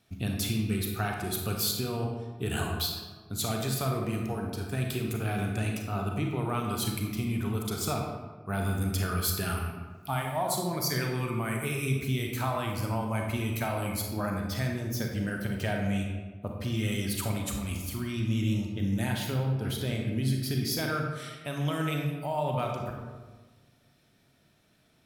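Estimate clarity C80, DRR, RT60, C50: 4.5 dB, 1.0 dB, 1.4 s, 2.5 dB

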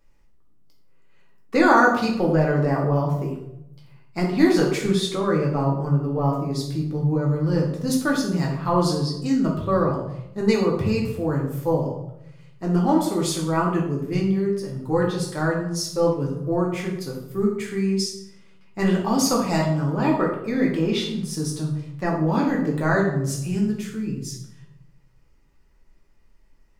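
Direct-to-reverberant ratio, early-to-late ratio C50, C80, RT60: −2.5 dB, 4.5 dB, 7.5 dB, 0.85 s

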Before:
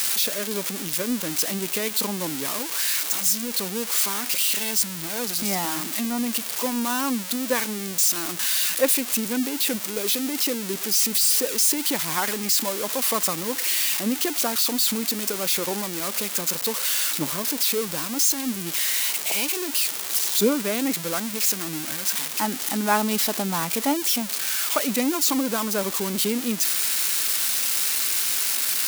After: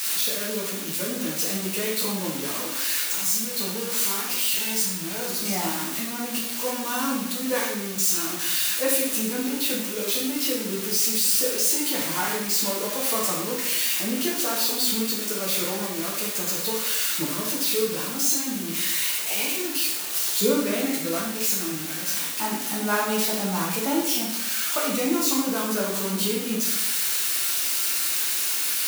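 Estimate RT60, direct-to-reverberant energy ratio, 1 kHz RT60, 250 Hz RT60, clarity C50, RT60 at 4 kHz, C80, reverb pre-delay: 0.80 s, −4.5 dB, 0.80 s, 0.95 s, 2.0 dB, 0.70 s, 5.5 dB, 7 ms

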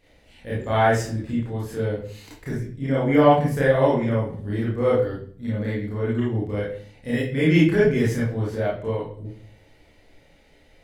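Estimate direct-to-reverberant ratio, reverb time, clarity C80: −7.5 dB, 0.50 s, 8.5 dB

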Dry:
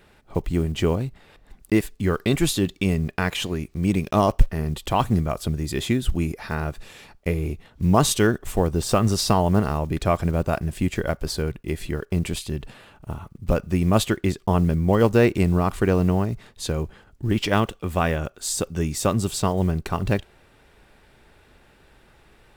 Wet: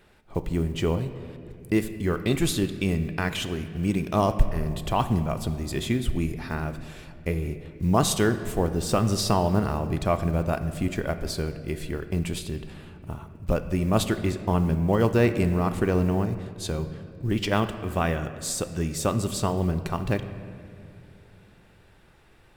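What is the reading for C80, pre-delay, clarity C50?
12.0 dB, 3 ms, 11.0 dB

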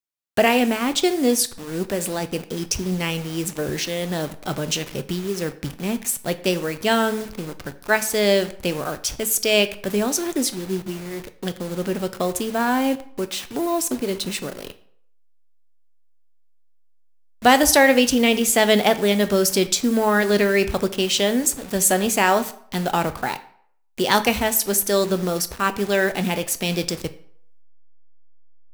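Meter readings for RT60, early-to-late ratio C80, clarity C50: 0.65 s, 18.5 dB, 15.5 dB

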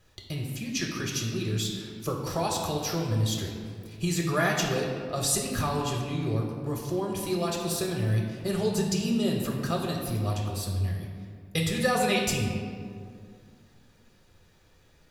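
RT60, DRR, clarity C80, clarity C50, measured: 2.3 s, −1.0 dB, 4.5 dB, 3.0 dB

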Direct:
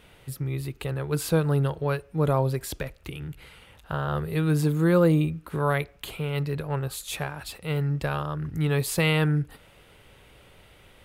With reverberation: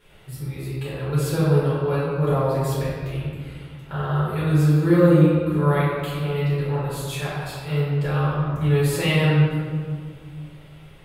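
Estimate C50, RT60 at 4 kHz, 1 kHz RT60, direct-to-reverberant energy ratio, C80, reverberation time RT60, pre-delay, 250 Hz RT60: −2.0 dB, 1.1 s, 1.8 s, −10.5 dB, 0.0 dB, 1.9 s, 5 ms, 2.7 s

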